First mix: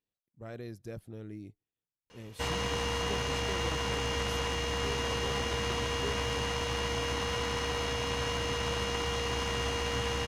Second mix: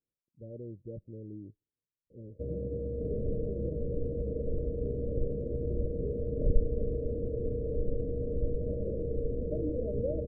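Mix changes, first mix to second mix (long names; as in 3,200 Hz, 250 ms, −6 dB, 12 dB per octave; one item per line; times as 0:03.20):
second sound: unmuted
master: add Chebyshev low-pass filter 600 Hz, order 8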